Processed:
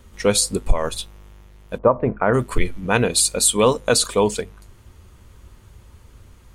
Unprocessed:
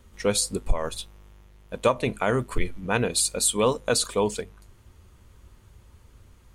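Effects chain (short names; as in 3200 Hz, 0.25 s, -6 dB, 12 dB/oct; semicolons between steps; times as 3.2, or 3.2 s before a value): 1.77–2.33 LPF 1100 Hz -> 1900 Hz 24 dB/oct; gain +6 dB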